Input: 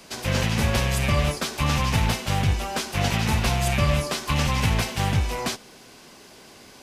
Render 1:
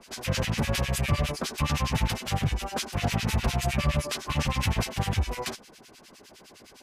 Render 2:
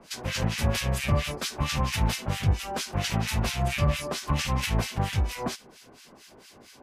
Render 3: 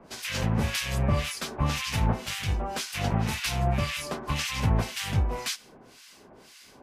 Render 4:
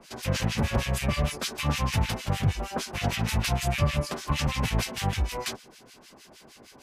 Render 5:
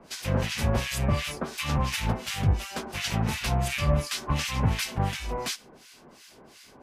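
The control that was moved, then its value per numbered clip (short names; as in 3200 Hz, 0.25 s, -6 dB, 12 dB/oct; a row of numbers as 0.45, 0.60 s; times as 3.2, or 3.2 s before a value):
harmonic tremolo, rate: 9.8, 4.4, 1.9, 6.5, 2.8 Hz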